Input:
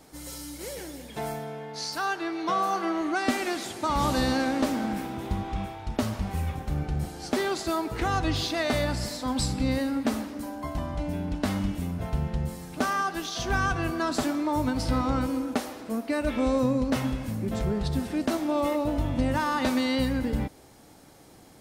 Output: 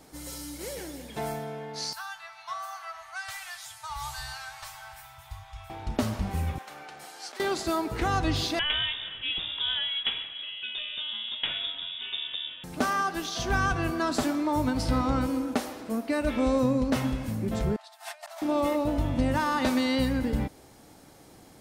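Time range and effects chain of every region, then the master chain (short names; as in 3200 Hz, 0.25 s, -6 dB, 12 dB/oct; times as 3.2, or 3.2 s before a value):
1.93–5.7 inverse Chebyshev band-stop 210–470 Hz, stop band 50 dB + high shelf 7400 Hz +8 dB + resonator 220 Hz, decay 0.17 s, mix 80%
6.58–7.4 HPF 920 Hz + high shelf 8000 Hz -5 dB + negative-ratio compressor -38 dBFS, ratio -0.5
8.59–12.64 bell 75 Hz -11 dB 2.7 oct + inverted band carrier 3600 Hz
17.76–18.42 negative-ratio compressor -37 dBFS + brick-wall FIR high-pass 580 Hz
whole clip: dry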